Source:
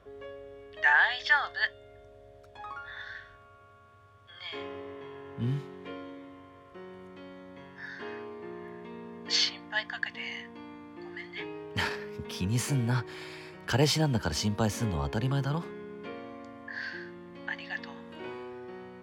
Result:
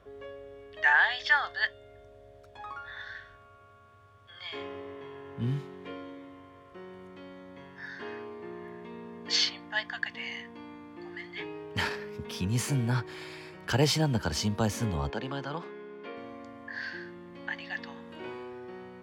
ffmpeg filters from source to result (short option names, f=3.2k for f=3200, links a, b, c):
-filter_complex "[0:a]asettb=1/sr,asplit=3[a][b][c];[a]atrim=end=15.104[d];[b]atrim=start=15.1:end=16.17,asetpts=PTS-STARTPTS,afade=t=in:d=0.004:c=qsin,afade=t=out:st=1.066:d=0.004:c=qsin,highpass=280,lowpass=4.8k[e];[c]atrim=start=16.166[f];[d][e]acrossfade=d=0.004:c1=hsin:c2=qsin[g];[g][f]acrossfade=d=0.004:c1=qsin:c2=hsin"